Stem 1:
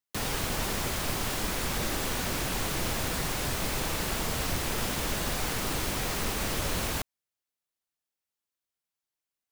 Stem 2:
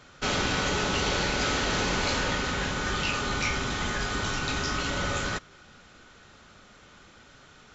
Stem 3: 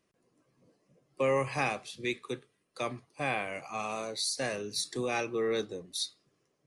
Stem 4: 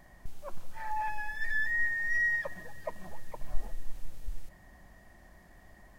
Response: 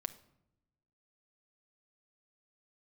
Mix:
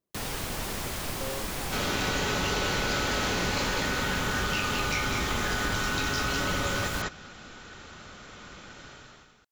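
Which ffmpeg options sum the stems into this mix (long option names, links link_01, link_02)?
-filter_complex "[0:a]volume=-2.5dB[link_01];[1:a]dynaudnorm=framelen=110:gausssize=7:maxgain=11dB,adelay=1500,volume=-5.5dB,asplit=2[link_02][link_03];[link_03]volume=-4.5dB[link_04];[2:a]lowpass=1100,volume=-10dB[link_05];[link_04]aecho=0:1:201:1[link_06];[link_01][link_02][link_05][link_06]amix=inputs=4:normalize=0,acompressor=threshold=-26dB:ratio=4"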